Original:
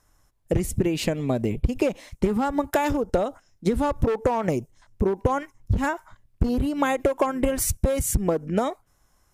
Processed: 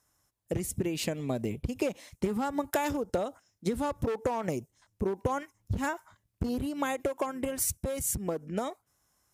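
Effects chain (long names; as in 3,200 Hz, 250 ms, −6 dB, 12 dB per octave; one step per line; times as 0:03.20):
high-pass filter 77 Hz
high-shelf EQ 4,100 Hz +7 dB
speech leveller 2 s
level −8 dB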